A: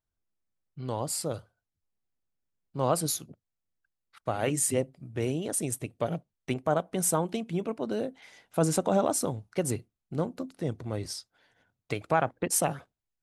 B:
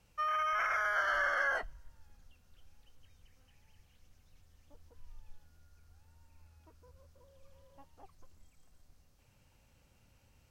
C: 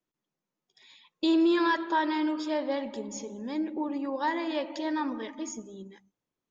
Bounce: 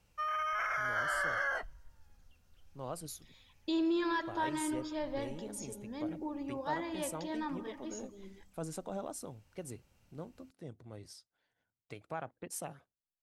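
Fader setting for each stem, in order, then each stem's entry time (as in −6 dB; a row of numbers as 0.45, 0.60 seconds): −15.5, −2.0, −8.0 decibels; 0.00, 0.00, 2.45 seconds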